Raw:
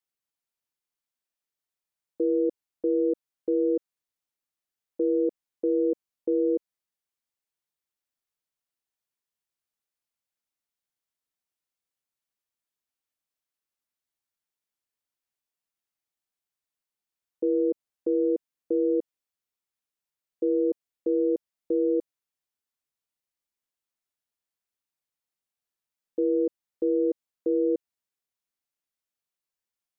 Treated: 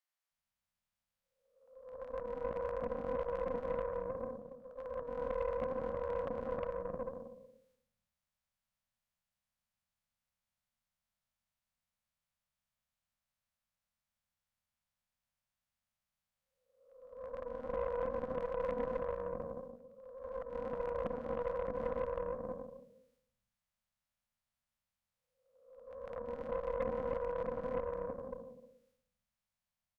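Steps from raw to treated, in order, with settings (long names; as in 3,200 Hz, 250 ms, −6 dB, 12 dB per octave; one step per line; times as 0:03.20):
spectrum smeared in time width 694 ms
spectral tilt −2.5 dB per octave
transient designer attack +3 dB, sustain +8 dB
mains-hum notches 50/100/150/200/250/300/350/400/450/500 Hz
brickwall limiter −24 dBFS, peak gain reduction 6.5 dB
elliptic band-stop filter 230–530 Hz
multiband delay without the direct sound highs, lows 310 ms, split 520 Hz
harmonic generator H 4 −13 dB, 7 −28 dB, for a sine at −33.5 dBFS
level +7.5 dB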